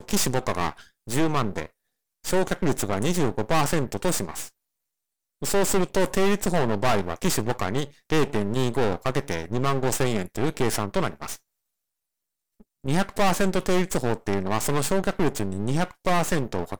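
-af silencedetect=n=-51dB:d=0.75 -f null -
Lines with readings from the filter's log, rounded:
silence_start: 4.50
silence_end: 5.42 | silence_duration: 0.91
silence_start: 11.39
silence_end: 12.60 | silence_duration: 1.20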